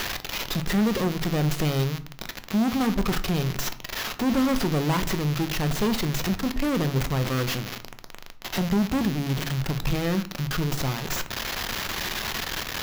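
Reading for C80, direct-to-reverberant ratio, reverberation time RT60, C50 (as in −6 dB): 21.0 dB, 9.5 dB, 0.50 s, 16.5 dB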